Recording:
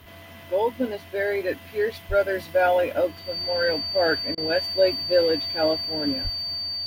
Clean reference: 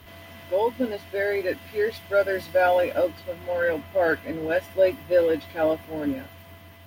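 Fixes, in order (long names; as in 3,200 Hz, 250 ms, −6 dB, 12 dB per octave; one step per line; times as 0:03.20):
notch filter 4,600 Hz, Q 30
0:02.08–0:02.20: high-pass filter 140 Hz 24 dB per octave
0:06.23–0:06.35: high-pass filter 140 Hz 24 dB per octave
repair the gap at 0:04.35, 25 ms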